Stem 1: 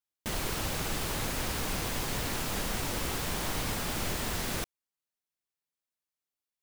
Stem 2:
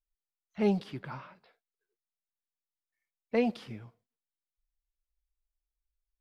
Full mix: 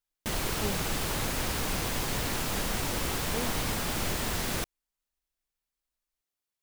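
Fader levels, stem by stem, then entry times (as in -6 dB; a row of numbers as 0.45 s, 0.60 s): +2.0 dB, -9.0 dB; 0.00 s, 0.00 s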